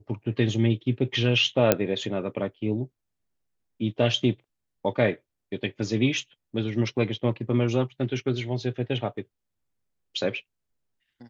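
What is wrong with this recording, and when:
1.72 pop -3 dBFS

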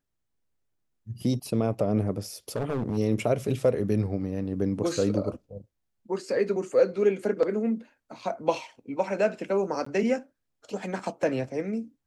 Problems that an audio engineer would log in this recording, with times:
2.56–2.98 clipped -24 dBFS
9.85–9.86 gap 14 ms

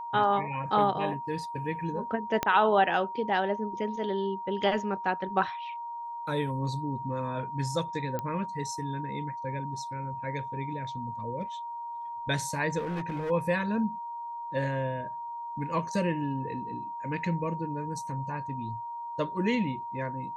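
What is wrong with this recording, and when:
tone 940 Hz -35 dBFS
2.43 pop -11 dBFS
8.19 pop -19 dBFS
12.78–13.31 clipped -29 dBFS

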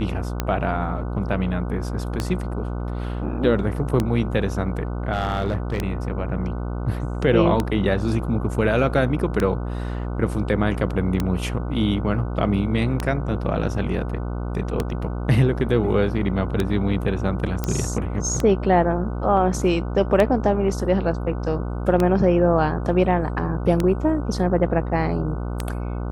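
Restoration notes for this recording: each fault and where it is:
buzz 60 Hz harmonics 25 -27 dBFS
tick 33 1/3 rpm -8 dBFS
5.12–5.79 clipped -17 dBFS
17.64 pop -10 dBFS

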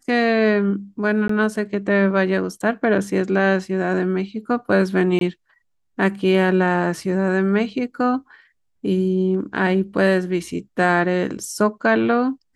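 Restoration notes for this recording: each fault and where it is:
1.28–1.29 gap 14 ms
5.19–5.21 gap 22 ms

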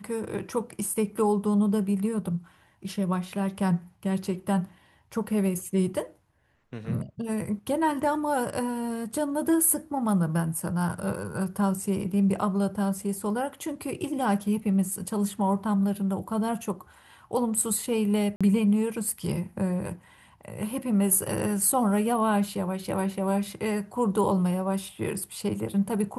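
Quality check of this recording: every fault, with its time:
18.36–18.41 gap 46 ms

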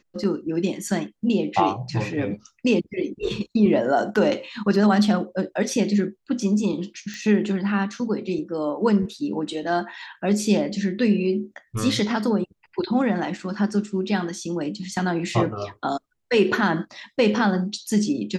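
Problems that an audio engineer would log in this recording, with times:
7.14 pop -22 dBFS

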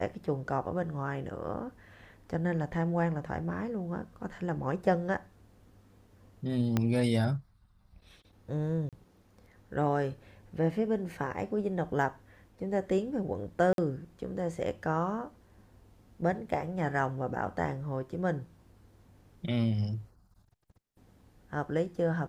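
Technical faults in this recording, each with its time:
6.77 pop -14 dBFS
8.89–8.93 gap 37 ms
13.73–13.78 gap 52 ms

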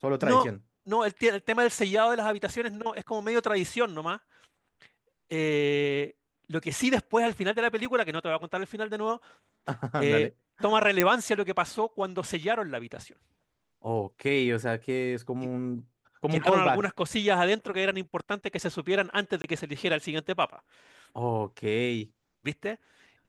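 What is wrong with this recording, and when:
7.85 gap 3.1 ms
11 pop -5 dBFS
19.42–19.44 gap 21 ms

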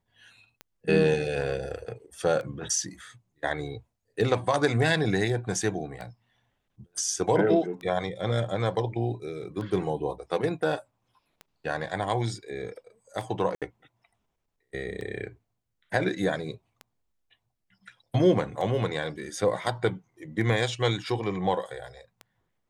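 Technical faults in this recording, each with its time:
tick 33 1/3 rpm -25 dBFS
13.55–13.62 gap 67 ms

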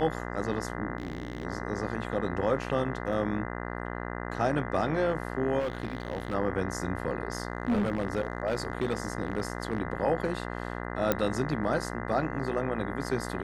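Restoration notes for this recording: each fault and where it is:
buzz 60 Hz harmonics 34 -36 dBFS
0.98–1.45 clipped -30 dBFS
3.13 gap 2.4 ms
5.59–6.35 clipped -27 dBFS
7.3–9.78 clipped -22.5 dBFS
11.12 pop -10 dBFS

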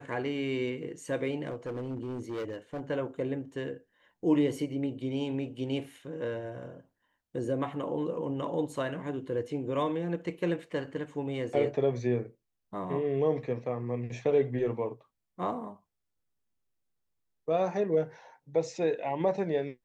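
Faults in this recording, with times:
1.51–2.81 clipped -32 dBFS

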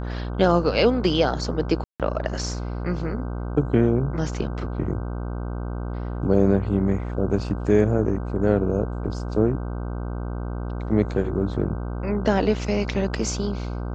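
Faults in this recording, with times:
buzz 60 Hz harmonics 26 -29 dBFS
1.84–2 gap 0.157 s

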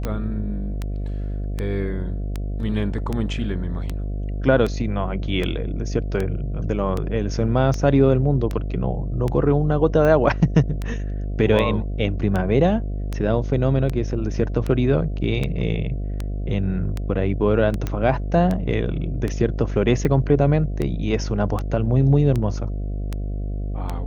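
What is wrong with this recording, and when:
buzz 50 Hz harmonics 14 -26 dBFS
tick 78 rpm -13 dBFS
17.87 pop -12 dBFS

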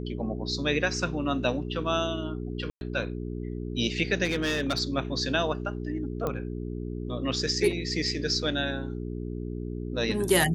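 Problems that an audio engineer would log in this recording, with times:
hum 60 Hz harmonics 7 -34 dBFS
2.7–2.81 gap 0.111 s
4.24–4.8 clipped -22.5 dBFS
6.27 pop -17 dBFS

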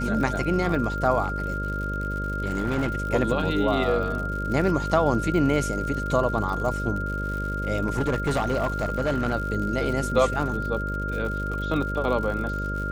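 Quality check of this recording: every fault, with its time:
buzz 50 Hz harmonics 12 -30 dBFS
crackle 100/s -32 dBFS
tone 1400 Hz -30 dBFS
1.23–2.92 clipped -20.5 dBFS
7.86–9.33 clipped -19.5 dBFS

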